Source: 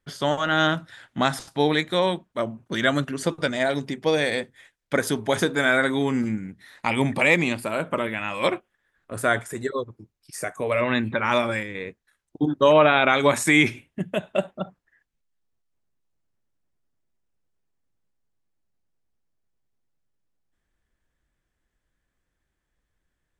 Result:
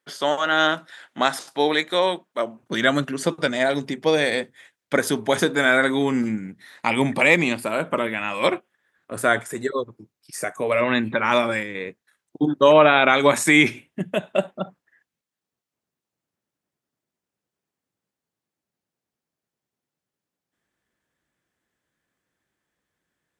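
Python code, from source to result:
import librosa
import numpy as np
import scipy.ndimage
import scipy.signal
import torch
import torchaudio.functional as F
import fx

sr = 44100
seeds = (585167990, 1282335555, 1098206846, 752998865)

y = fx.highpass(x, sr, hz=fx.steps((0.0, 340.0), (2.63, 150.0)), slope=12)
y = F.gain(torch.from_numpy(y), 2.5).numpy()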